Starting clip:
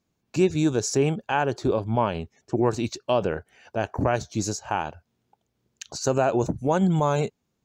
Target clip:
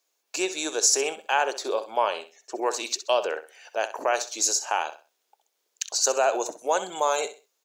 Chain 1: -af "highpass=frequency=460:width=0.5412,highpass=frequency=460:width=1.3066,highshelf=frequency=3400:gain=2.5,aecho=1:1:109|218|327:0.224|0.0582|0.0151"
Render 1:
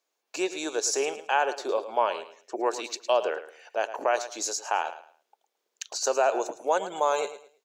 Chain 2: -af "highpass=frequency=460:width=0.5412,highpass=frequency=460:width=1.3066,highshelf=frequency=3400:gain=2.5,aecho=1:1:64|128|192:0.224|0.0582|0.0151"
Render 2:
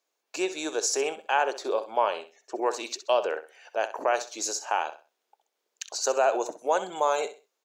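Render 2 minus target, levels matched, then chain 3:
8,000 Hz band −5.0 dB
-af "highpass=frequency=460:width=0.5412,highpass=frequency=460:width=1.3066,highshelf=frequency=3400:gain=12,aecho=1:1:64|128|192:0.224|0.0582|0.0151"

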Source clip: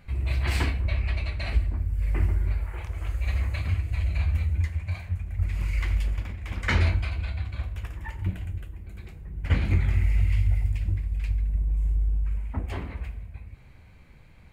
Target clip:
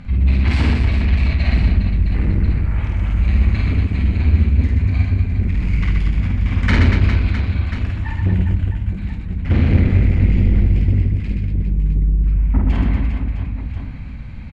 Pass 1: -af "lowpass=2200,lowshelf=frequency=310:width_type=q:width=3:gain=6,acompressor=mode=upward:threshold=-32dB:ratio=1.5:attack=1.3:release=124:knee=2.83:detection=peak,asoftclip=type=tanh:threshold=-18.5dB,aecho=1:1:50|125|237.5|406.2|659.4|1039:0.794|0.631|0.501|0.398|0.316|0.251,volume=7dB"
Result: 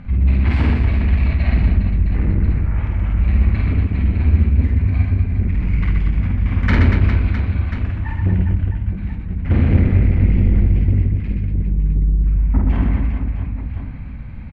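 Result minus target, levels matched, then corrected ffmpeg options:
4,000 Hz band −6.5 dB
-af "lowpass=4700,lowshelf=frequency=310:width_type=q:width=3:gain=6,acompressor=mode=upward:threshold=-32dB:ratio=1.5:attack=1.3:release=124:knee=2.83:detection=peak,asoftclip=type=tanh:threshold=-18.5dB,aecho=1:1:50|125|237.5|406.2|659.4|1039:0.794|0.631|0.501|0.398|0.316|0.251,volume=7dB"

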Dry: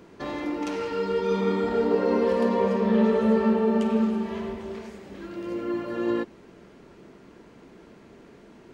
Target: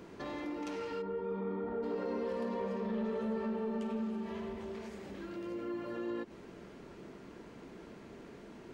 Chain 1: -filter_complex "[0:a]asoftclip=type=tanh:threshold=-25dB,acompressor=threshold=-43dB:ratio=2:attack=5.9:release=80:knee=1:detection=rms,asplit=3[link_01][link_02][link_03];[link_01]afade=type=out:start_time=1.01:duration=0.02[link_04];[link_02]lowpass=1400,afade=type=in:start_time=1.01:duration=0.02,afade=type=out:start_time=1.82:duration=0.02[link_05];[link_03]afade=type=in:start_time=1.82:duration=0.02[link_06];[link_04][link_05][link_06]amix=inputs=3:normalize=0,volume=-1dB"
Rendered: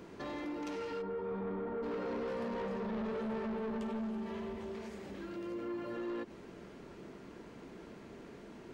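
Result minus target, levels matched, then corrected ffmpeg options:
soft clipping: distortion +13 dB
-filter_complex "[0:a]asoftclip=type=tanh:threshold=-13.5dB,acompressor=threshold=-43dB:ratio=2:attack=5.9:release=80:knee=1:detection=rms,asplit=3[link_01][link_02][link_03];[link_01]afade=type=out:start_time=1.01:duration=0.02[link_04];[link_02]lowpass=1400,afade=type=in:start_time=1.01:duration=0.02,afade=type=out:start_time=1.82:duration=0.02[link_05];[link_03]afade=type=in:start_time=1.82:duration=0.02[link_06];[link_04][link_05][link_06]amix=inputs=3:normalize=0,volume=-1dB"

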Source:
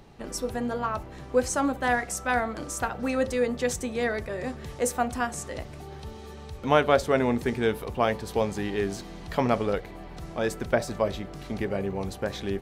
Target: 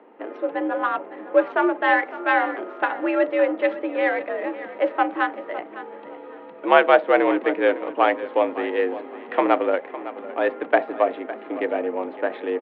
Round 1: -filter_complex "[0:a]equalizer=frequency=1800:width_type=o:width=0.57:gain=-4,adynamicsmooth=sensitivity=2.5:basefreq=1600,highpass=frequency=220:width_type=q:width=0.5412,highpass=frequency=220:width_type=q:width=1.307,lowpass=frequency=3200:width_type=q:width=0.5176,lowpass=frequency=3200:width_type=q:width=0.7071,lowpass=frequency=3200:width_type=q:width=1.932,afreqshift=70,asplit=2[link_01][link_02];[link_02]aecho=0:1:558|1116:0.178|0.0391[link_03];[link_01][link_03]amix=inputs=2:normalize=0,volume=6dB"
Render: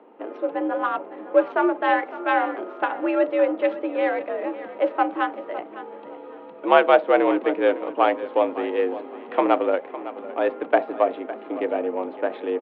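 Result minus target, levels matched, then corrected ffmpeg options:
2,000 Hz band −3.5 dB
-filter_complex "[0:a]equalizer=frequency=1800:width_type=o:width=0.57:gain=2.5,adynamicsmooth=sensitivity=2.5:basefreq=1600,highpass=frequency=220:width_type=q:width=0.5412,highpass=frequency=220:width_type=q:width=1.307,lowpass=frequency=3200:width_type=q:width=0.5176,lowpass=frequency=3200:width_type=q:width=0.7071,lowpass=frequency=3200:width_type=q:width=1.932,afreqshift=70,asplit=2[link_01][link_02];[link_02]aecho=0:1:558|1116:0.178|0.0391[link_03];[link_01][link_03]amix=inputs=2:normalize=0,volume=6dB"

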